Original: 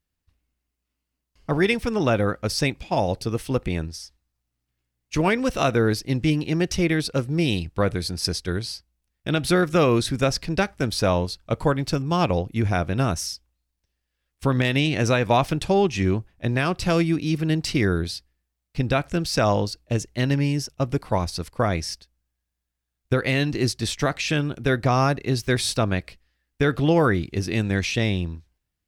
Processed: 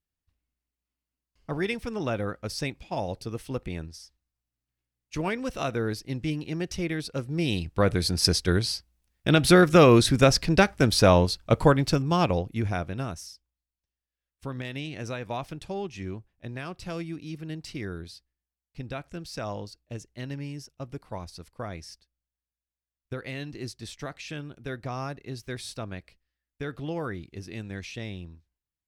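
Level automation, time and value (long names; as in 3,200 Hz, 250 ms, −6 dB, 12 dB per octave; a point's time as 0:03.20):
0:07.11 −8.5 dB
0:08.16 +3 dB
0:11.59 +3 dB
0:12.76 −6.5 dB
0:13.32 −14 dB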